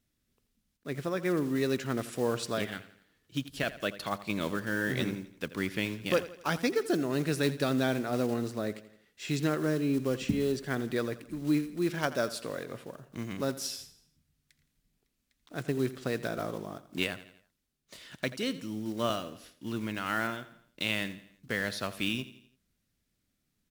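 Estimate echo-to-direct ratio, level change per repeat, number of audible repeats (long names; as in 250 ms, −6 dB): −15.0 dB, −6.5 dB, 3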